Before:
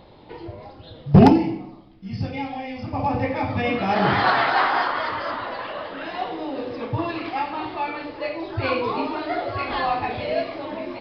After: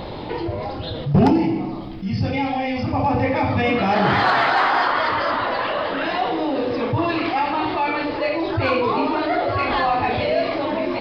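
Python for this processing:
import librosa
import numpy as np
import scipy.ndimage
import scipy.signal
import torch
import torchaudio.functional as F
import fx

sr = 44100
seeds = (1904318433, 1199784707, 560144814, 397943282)

p1 = fx.high_shelf(x, sr, hz=3900.0, db=-3.5, at=(8.57, 10.03))
p2 = 10.0 ** (-17.5 / 20.0) * np.tanh(p1 / 10.0 ** (-17.5 / 20.0))
p3 = p1 + F.gain(torch.from_numpy(p2), -7.0).numpy()
p4 = fx.env_flatten(p3, sr, amount_pct=50)
y = F.gain(torch.from_numpy(p4), -5.5).numpy()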